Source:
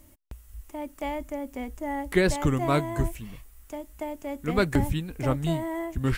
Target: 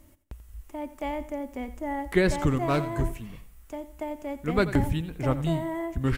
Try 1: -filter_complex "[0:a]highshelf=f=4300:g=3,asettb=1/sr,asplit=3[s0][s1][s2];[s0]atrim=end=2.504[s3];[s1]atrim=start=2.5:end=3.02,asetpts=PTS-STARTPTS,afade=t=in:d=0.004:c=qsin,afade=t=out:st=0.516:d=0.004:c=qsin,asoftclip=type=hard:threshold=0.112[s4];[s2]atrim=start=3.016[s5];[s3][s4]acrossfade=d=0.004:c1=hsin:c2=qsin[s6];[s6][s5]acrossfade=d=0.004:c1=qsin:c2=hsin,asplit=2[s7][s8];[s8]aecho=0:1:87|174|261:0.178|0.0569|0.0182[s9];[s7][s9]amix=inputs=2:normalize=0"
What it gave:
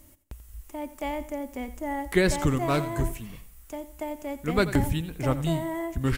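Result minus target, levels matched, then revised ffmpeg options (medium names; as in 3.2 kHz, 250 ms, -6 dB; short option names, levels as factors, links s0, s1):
8 kHz band +6.5 dB
-filter_complex "[0:a]highshelf=f=4300:g=-5.5,asettb=1/sr,asplit=3[s0][s1][s2];[s0]atrim=end=2.504[s3];[s1]atrim=start=2.5:end=3.02,asetpts=PTS-STARTPTS,afade=t=in:d=0.004:c=qsin,afade=t=out:st=0.516:d=0.004:c=qsin,asoftclip=type=hard:threshold=0.112[s4];[s2]atrim=start=3.016[s5];[s3][s4]acrossfade=d=0.004:c1=hsin:c2=qsin[s6];[s6][s5]acrossfade=d=0.004:c1=qsin:c2=hsin,asplit=2[s7][s8];[s8]aecho=0:1:87|174|261:0.178|0.0569|0.0182[s9];[s7][s9]amix=inputs=2:normalize=0"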